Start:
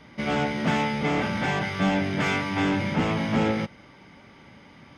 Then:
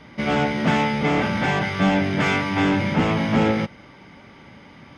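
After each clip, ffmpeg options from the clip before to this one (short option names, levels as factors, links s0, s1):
-af "highshelf=f=7000:g=-5.5,volume=1.68"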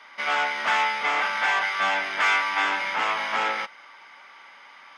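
-af "highpass=f=1100:t=q:w=1.5"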